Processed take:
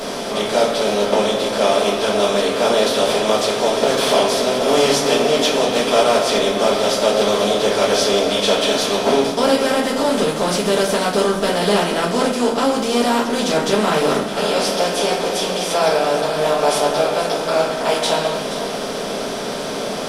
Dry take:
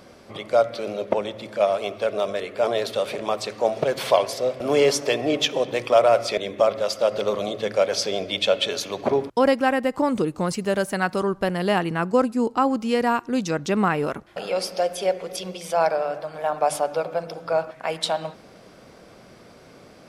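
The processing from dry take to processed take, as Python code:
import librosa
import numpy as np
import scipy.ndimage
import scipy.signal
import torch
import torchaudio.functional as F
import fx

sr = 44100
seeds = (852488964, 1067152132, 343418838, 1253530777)

p1 = fx.bin_compress(x, sr, power=0.4)
p2 = fx.high_shelf(p1, sr, hz=4000.0, db=8.0)
p3 = fx.hum_notches(p2, sr, base_hz=50, count=3)
p4 = p3 + fx.echo_single(p3, sr, ms=477, db=-12.5, dry=0)
p5 = fx.room_shoebox(p4, sr, seeds[0], volume_m3=39.0, walls='mixed', distance_m=1.6)
y = F.gain(torch.from_numpy(p5), -13.0).numpy()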